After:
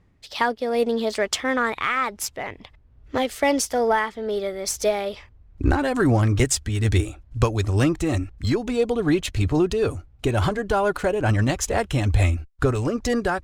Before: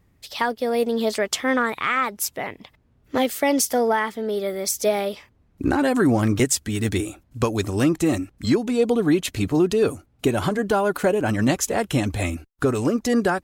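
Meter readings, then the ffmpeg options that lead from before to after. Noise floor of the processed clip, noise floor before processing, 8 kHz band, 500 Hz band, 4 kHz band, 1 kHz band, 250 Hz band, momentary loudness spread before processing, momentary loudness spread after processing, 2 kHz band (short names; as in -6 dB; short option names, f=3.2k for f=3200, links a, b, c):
-54 dBFS, -61 dBFS, -2.0 dB, -1.0 dB, -0.5 dB, 0.0 dB, -3.0 dB, 7 LU, 6 LU, 0.0 dB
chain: -af "asubboost=boost=8.5:cutoff=69,adynamicsmooth=sensitivity=6.5:basefreq=6.4k,tremolo=f=2.3:d=0.29,volume=1.5dB"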